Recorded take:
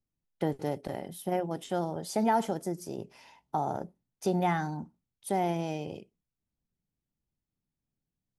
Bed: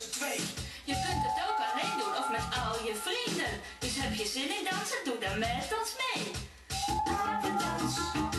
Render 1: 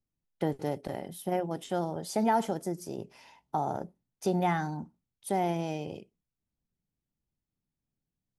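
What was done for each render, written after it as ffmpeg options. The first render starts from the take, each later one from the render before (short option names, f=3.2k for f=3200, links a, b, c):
-af anull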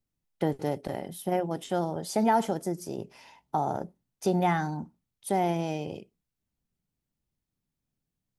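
-af "volume=2.5dB"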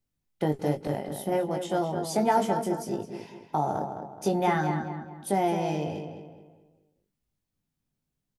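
-filter_complex "[0:a]asplit=2[a][b];[b]adelay=20,volume=-5.5dB[c];[a][c]amix=inputs=2:normalize=0,asplit=2[d][e];[e]adelay=212,lowpass=f=2.9k:p=1,volume=-7dB,asplit=2[f][g];[g]adelay=212,lowpass=f=2.9k:p=1,volume=0.4,asplit=2[h][i];[i]adelay=212,lowpass=f=2.9k:p=1,volume=0.4,asplit=2[j][k];[k]adelay=212,lowpass=f=2.9k:p=1,volume=0.4,asplit=2[l][m];[m]adelay=212,lowpass=f=2.9k:p=1,volume=0.4[n];[d][f][h][j][l][n]amix=inputs=6:normalize=0"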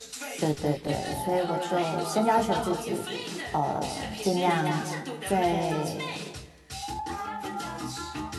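-filter_complex "[1:a]volume=-3dB[a];[0:a][a]amix=inputs=2:normalize=0"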